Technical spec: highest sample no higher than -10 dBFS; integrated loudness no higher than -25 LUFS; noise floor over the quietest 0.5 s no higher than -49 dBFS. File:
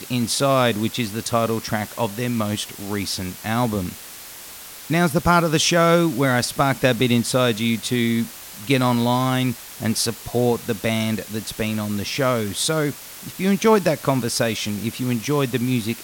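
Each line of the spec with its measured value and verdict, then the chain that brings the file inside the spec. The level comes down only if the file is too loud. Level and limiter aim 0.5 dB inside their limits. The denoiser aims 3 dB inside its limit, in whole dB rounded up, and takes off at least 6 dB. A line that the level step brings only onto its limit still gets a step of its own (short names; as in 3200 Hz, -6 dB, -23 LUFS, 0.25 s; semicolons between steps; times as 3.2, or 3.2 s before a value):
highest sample -3.5 dBFS: fail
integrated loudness -21.0 LUFS: fail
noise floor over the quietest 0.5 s -39 dBFS: fail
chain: denoiser 9 dB, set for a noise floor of -39 dBFS; gain -4.5 dB; limiter -10.5 dBFS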